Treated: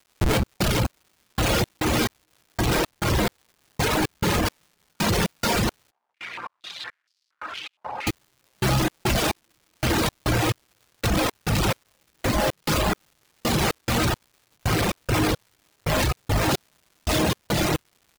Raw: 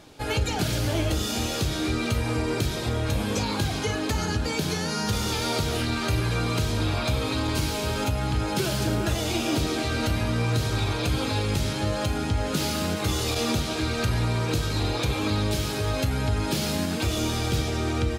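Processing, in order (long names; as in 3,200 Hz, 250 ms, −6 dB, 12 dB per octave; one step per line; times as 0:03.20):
automatic gain control gain up to 16.5 dB
comparator with hysteresis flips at −21.5 dBFS
bouncing-ball delay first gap 430 ms, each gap 0.75×, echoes 5
convolution reverb RT60 0.65 s, pre-delay 6 ms, DRR 8.5 dB
hard clipping −5 dBFS, distortion −23 dB
reverb reduction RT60 1.1 s
gate pattern "..xxx..xxx...." 174 BPM −60 dB
brickwall limiter −15 dBFS, peak gain reduction 10 dB
surface crackle 360 per second −47 dBFS
0:05.91–0:08.07: band-pass on a step sequencer 4.3 Hz 840–4,800 Hz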